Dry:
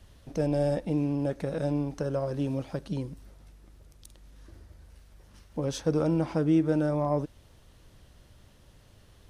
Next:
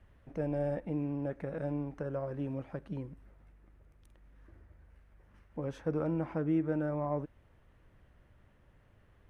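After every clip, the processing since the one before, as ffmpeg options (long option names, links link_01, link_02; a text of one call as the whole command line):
ffmpeg -i in.wav -af "highshelf=frequency=3000:width_type=q:width=1.5:gain=-13.5,volume=-7dB" out.wav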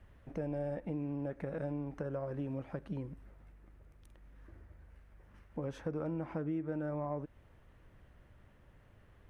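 ffmpeg -i in.wav -af "acompressor=threshold=-38dB:ratio=3,volume=2dB" out.wav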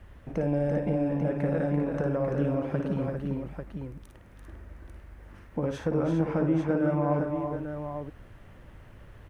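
ffmpeg -i in.wav -af "aecho=1:1:55|339|396|843:0.447|0.501|0.398|0.447,volume=9dB" out.wav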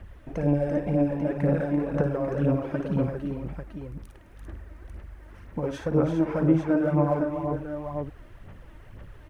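ffmpeg -i in.wav -af "aphaser=in_gain=1:out_gain=1:delay=3.3:decay=0.5:speed=2:type=sinusoidal" out.wav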